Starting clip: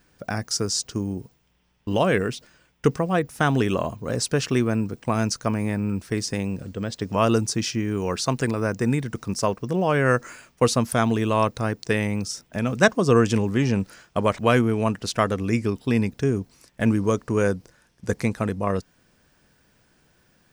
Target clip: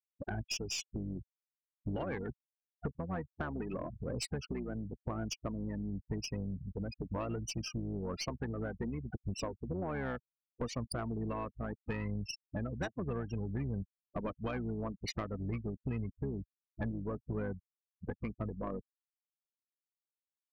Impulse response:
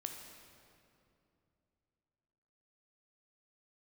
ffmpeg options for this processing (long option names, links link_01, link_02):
-filter_complex "[0:a]afftfilt=real='re*gte(hypot(re,im),0.1)':imag='im*gte(hypot(re,im),0.1)':win_size=1024:overlap=0.75,highshelf=frequency=2300:gain=4,acompressor=threshold=-31dB:ratio=8,asplit=2[link_01][link_02];[link_02]asetrate=22050,aresample=44100,atempo=2,volume=-5dB[link_03];[link_01][link_03]amix=inputs=2:normalize=0,aeval=exprs='(tanh(15.8*val(0)+0.25)-tanh(0.25))/15.8':channel_layout=same,volume=-3.5dB"